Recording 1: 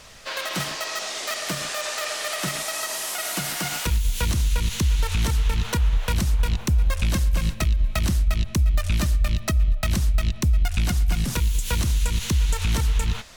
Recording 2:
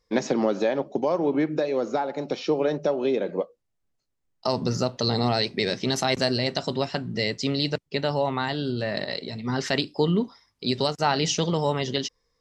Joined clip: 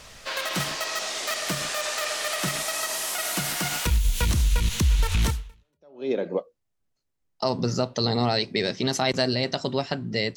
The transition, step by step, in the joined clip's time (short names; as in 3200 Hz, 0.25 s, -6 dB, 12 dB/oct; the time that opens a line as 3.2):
recording 1
5.7 switch to recording 2 from 2.73 s, crossfade 0.82 s exponential